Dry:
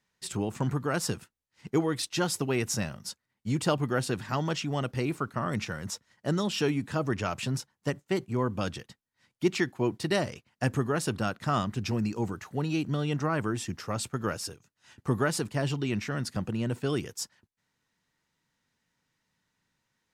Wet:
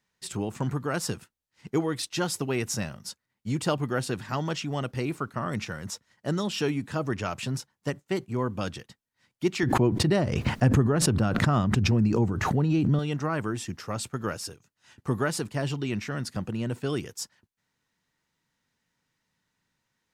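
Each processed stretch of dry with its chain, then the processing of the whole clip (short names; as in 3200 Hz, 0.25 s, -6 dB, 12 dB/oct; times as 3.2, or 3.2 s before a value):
9.63–12.99 tilt -2.5 dB/oct + backwards sustainer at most 31 dB/s
whole clip: dry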